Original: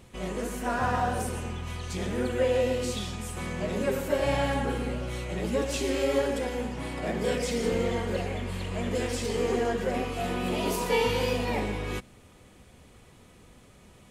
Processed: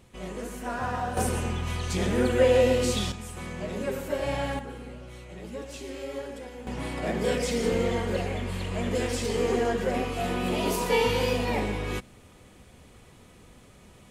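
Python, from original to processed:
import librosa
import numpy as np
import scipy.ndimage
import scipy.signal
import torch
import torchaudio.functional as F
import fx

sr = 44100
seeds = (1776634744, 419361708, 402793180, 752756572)

y = fx.gain(x, sr, db=fx.steps((0.0, -3.5), (1.17, 5.0), (3.12, -3.0), (4.59, -10.0), (6.67, 1.5)))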